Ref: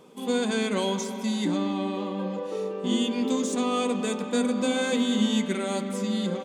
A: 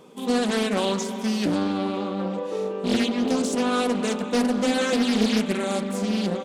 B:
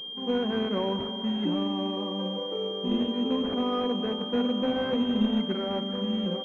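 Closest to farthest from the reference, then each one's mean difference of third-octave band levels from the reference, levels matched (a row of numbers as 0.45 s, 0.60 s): A, B; 3.0 dB, 7.5 dB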